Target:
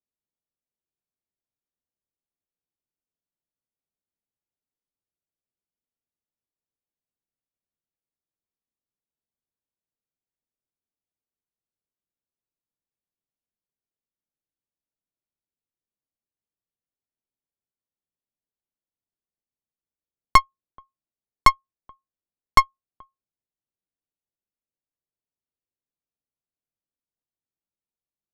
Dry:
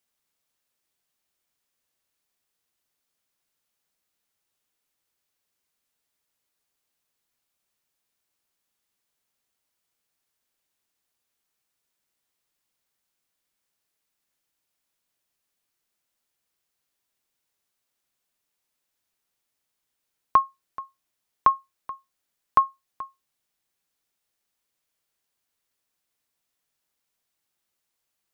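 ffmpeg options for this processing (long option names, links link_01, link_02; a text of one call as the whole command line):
ffmpeg -i in.wav -af "aeval=exprs='0.473*(cos(1*acos(clip(val(0)/0.473,-1,1)))-cos(1*PI/2))+0.168*(cos(4*acos(clip(val(0)/0.473,-1,1)))-cos(4*PI/2))+0.0422*(cos(5*acos(clip(val(0)/0.473,-1,1)))-cos(5*PI/2))+0.0531*(cos(6*acos(clip(val(0)/0.473,-1,1)))-cos(6*PI/2))+0.075*(cos(7*acos(clip(val(0)/0.473,-1,1)))-cos(7*PI/2))':channel_layout=same,adynamicsmooth=sensitivity=1:basefreq=610,volume=3dB" out.wav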